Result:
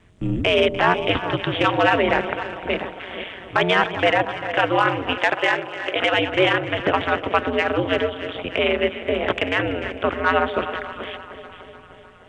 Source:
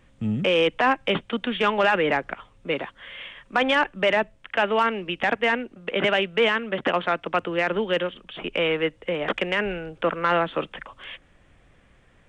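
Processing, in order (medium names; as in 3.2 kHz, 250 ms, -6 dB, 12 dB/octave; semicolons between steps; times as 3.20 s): chunks repeated in reverse 270 ms, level -12 dB; on a send: echo whose repeats swap between lows and highs 149 ms, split 830 Hz, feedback 81%, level -12 dB; on the sum: ring modulator 92 Hz; 5.18–6.14 s: tone controls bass -14 dB, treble +5 dB; trim +5.5 dB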